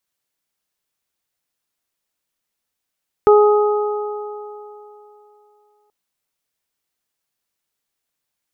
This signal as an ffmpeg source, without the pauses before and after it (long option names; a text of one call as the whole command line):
ffmpeg -f lavfi -i "aevalsrc='0.473*pow(10,-3*t/2.84)*sin(2*PI*418*t)+0.168*pow(10,-3*t/3.31)*sin(2*PI*836*t)+0.15*pow(10,-3*t/2.85)*sin(2*PI*1254*t)':duration=2.63:sample_rate=44100" out.wav